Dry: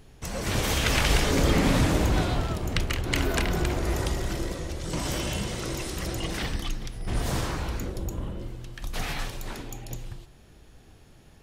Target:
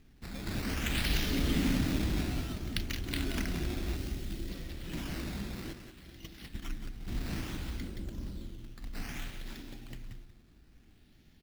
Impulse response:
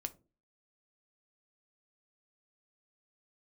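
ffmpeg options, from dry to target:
-filter_complex "[0:a]acrusher=samples=10:mix=1:aa=0.000001:lfo=1:lforange=10:lforate=0.6,asettb=1/sr,asplit=3[s0][s1][s2];[s0]atrim=end=3.964[s3];[s1]atrim=start=3.96:end=4.49,asetpts=PTS-STARTPTS,afade=t=in:d=0.004:c=qsin,afade=t=out:st=0.526:d=0.004:c=qsin,equalizer=f=1200:w=0.49:g=-7.5[s4];[s2]atrim=start=4.486[s5];[s3][s4]acrossfade=d=0.004:c1=hsin:c2=qsin[s6];[s6][s5]acrossfade=d=0.004:c1=qsin:c2=hsin,asplit=3[s7][s8][s9];[s7]afade=t=out:st=5.72:d=0.02[s10];[s8]agate=range=0.251:threshold=0.0447:ratio=16:detection=peak,afade=t=in:st=5.72:d=0.02,afade=t=out:st=6.62:d=0.02[s11];[s9]afade=t=in:st=6.62:d=0.02[s12];[s10][s11][s12]amix=inputs=3:normalize=0,equalizer=f=125:t=o:w=1:g=-4,equalizer=f=250:t=o:w=1:g=6,equalizer=f=500:t=o:w=1:g=-9,equalizer=f=1000:t=o:w=1:g=-8,equalizer=f=4000:t=o:w=1:g=3,equalizer=f=8000:t=o:w=1:g=-3,aecho=1:1:178:0.335,volume=0.422"

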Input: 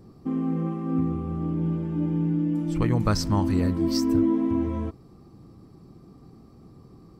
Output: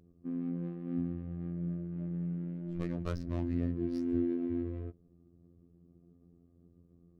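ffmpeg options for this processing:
-af "adynamicsmooth=sensitivity=2.5:basefreq=600,superequalizer=9b=0.316:10b=0.631,afftfilt=real='hypot(re,im)*cos(PI*b)':imag='0':win_size=2048:overlap=0.75,volume=0.376"

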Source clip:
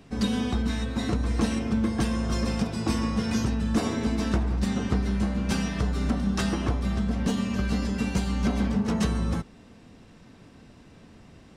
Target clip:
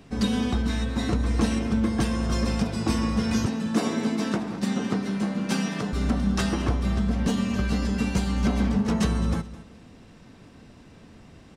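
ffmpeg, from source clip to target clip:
-filter_complex "[0:a]asettb=1/sr,asplit=3[s0][s1][s2];[s0]atrim=end=3.464[s3];[s1]atrim=start=3.46:end=5.93,asetpts=PTS-STARTPTS,afade=t=in:d=0.004:c=qsin,afade=t=out:st=2.466:d=0.004:c=qsin,highpass=f=150:w=0.5412,highpass=f=150:w=1.3066[s4];[s2]atrim=start=5.926[s5];[s3][s4]acrossfade=d=0.004:c1=hsin:c2=qsin[s6];[s6][s5]acrossfade=d=0.004:c1=qsin:c2=hsin,aecho=1:1:212|424:0.141|0.0353,volume=1.19"

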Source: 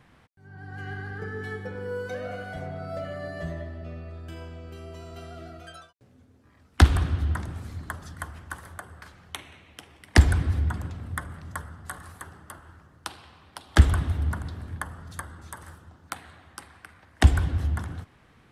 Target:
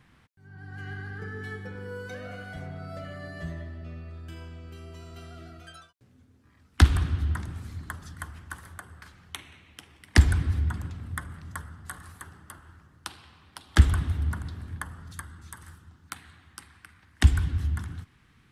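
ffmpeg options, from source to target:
-af "asetnsamples=n=441:p=0,asendcmd='15.13 equalizer g -14',equalizer=f=600:w=1.1:g=-7.5,volume=0.891"

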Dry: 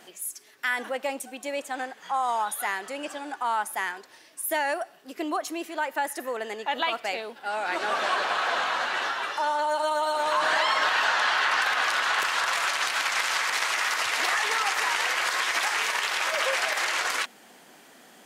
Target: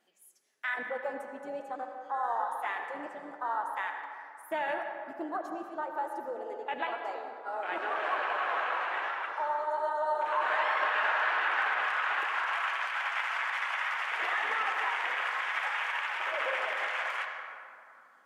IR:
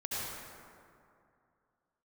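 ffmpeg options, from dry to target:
-filter_complex "[0:a]afwtdn=0.0398,flanger=delay=3.5:depth=5.2:regen=-61:speed=1.1:shape=sinusoidal,asplit=2[s0][s1];[1:a]atrim=start_sample=2205,lowpass=5200,lowshelf=f=160:g=-11.5[s2];[s1][s2]afir=irnorm=-1:irlink=0,volume=0.531[s3];[s0][s3]amix=inputs=2:normalize=0,volume=0.631"

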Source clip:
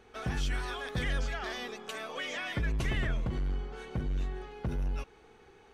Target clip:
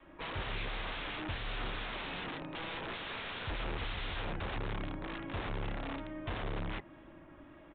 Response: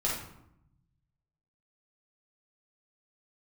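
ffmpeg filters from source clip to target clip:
-filter_complex "[0:a]adynamicequalizer=threshold=0.00501:dfrequency=160:dqfactor=0.72:tfrequency=160:tqfactor=0.72:attack=5:release=100:ratio=0.375:range=3:mode=boostabove:tftype=bell,acrossover=split=140|4200[s0][s1][s2];[s0]acompressor=threshold=0.00794:ratio=6[s3];[s1]aeval=exprs='(mod(70.8*val(0)+1,2)-1)/70.8':c=same[s4];[s2]tremolo=f=2.5:d=0.8[s5];[s3][s4][s5]amix=inputs=3:normalize=0,aresample=11025,aresample=44100,asetrate=32667,aresample=44100,volume=1.33"

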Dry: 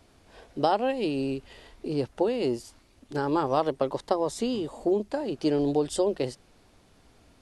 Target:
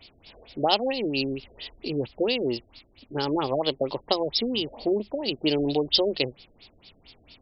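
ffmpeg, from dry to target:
-af "aexciter=amount=12.5:drive=2.8:freq=2400,afftfilt=real='re*lt(b*sr/1024,660*pow(5600/660,0.5+0.5*sin(2*PI*4.4*pts/sr)))':imag='im*lt(b*sr/1024,660*pow(5600/660,0.5+0.5*sin(2*PI*4.4*pts/sr)))':win_size=1024:overlap=0.75"

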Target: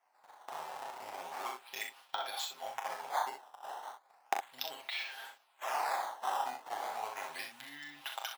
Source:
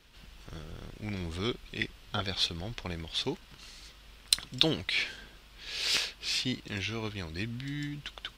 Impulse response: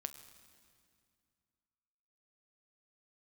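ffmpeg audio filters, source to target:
-filter_complex "[0:a]agate=range=0.0794:threshold=0.00398:ratio=16:detection=peak,aecho=1:1:7.5:0.9,acompressor=threshold=0.01:ratio=16,acrusher=samples=11:mix=1:aa=0.000001:lfo=1:lforange=17.6:lforate=0.35,highpass=f=800:t=q:w=4.8,asplit=2[s0][s1];[s1]aecho=0:1:28|39|63:0.237|0.447|0.447[s2];[s0][s2]amix=inputs=2:normalize=0,volume=1.26"

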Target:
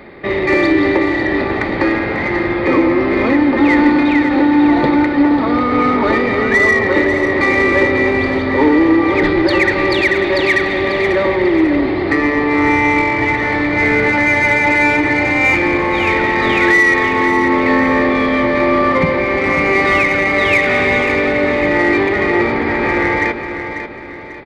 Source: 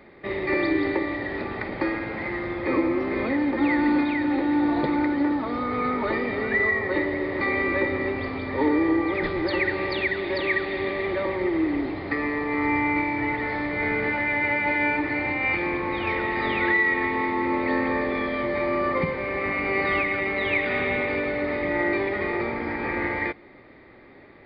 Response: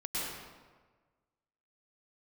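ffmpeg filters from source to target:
-filter_complex "[0:a]asplit=2[s0][s1];[s1]asoftclip=type=tanh:threshold=0.0501,volume=0.708[s2];[s0][s2]amix=inputs=2:normalize=0,aecho=1:1:543|1086|1629|2172:0.355|0.138|0.054|0.021,volume=2.51"

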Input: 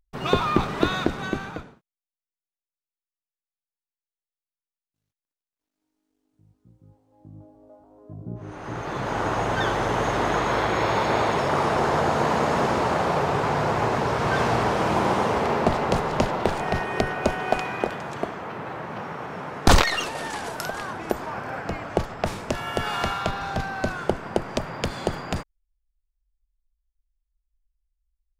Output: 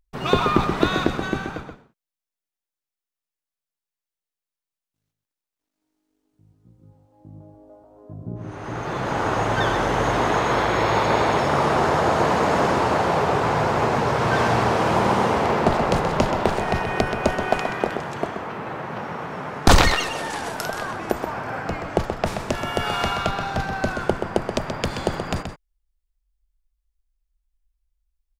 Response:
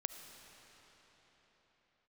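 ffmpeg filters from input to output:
-filter_complex "[0:a]asplit=2[s0][s1];[s1]adelay=128.3,volume=0.447,highshelf=f=4000:g=-2.89[s2];[s0][s2]amix=inputs=2:normalize=0,volume=1.26"

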